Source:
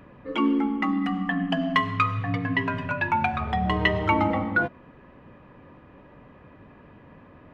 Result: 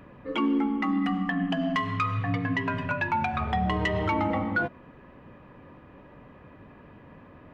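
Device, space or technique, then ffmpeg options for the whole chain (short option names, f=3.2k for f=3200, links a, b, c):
soft clipper into limiter: -af "asoftclip=type=tanh:threshold=-11.5dB,alimiter=limit=-17.5dB:level=0:latency=1:release=137"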